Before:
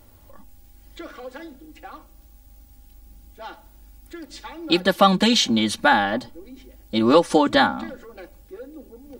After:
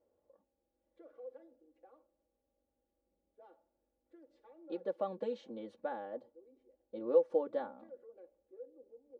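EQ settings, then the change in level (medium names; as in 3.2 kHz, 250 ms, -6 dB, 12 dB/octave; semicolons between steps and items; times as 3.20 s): band-pass filter 490 Hz, Q 5.4; -9.0 dB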